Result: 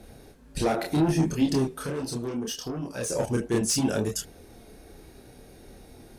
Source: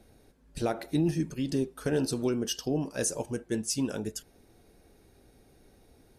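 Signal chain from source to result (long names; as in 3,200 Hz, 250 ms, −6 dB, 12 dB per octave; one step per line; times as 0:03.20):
harmonic generator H 5 −14 dB, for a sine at −16.5 dBFS
in parallel at −3 dB: brickwall limiter −26.5 dBFS, peak gain reduction 9.5 dB
0:01.68–0:03.10: on the sum: downward compressor 2.5 to 1, threshold −34 dBFS, peak gain reduction 9 dB
multi-voice chorus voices 2, 0.7 Hz, delay 29 ms, depth 5 ms
level +3 dB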